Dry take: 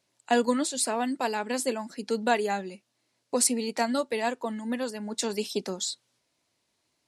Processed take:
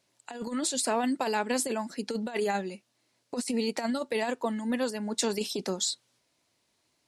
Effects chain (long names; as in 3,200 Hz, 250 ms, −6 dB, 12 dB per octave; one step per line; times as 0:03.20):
compressor whose output falls as the input rises −28 dBFS, ratio −0.5